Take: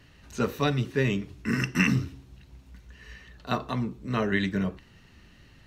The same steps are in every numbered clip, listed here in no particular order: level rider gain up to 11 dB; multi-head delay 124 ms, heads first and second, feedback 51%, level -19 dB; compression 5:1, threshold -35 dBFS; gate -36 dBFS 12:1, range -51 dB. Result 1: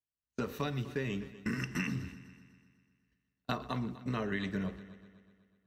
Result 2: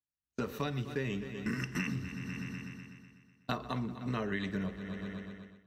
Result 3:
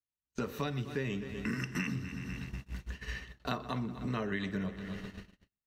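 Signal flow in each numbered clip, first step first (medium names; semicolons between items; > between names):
gate > level rider > compression > multi-head delay; gate > multi-head delay > level rider > compression; level rider > multi-head delay > gate > compression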